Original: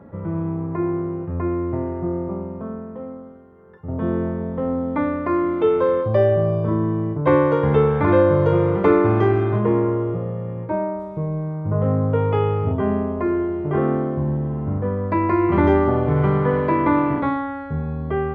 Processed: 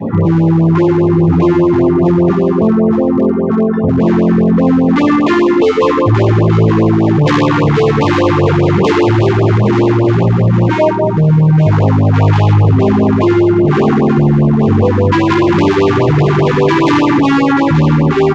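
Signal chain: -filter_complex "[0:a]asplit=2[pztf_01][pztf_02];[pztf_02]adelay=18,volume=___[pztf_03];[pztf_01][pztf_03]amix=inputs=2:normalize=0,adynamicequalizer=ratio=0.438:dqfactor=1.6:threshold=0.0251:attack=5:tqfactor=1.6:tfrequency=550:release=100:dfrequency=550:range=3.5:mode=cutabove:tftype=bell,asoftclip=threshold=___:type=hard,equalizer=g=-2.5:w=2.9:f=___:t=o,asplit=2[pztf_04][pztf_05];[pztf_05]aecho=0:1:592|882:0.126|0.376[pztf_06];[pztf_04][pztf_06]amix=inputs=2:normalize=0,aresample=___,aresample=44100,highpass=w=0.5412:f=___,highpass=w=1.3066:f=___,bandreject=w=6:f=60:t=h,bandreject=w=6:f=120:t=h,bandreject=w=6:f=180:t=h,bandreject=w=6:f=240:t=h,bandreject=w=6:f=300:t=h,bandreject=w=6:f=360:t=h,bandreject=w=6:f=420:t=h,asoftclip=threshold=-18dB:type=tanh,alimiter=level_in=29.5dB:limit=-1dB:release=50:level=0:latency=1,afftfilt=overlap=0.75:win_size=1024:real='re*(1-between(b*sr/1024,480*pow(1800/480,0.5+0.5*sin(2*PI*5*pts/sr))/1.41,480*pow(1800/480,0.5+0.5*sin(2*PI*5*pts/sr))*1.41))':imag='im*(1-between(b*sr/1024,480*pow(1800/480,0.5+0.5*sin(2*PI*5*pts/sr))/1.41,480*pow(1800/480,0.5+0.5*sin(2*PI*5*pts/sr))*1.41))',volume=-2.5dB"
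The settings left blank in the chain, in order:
-5.5dB, -22.5dB, 2500, 16000, 100, 100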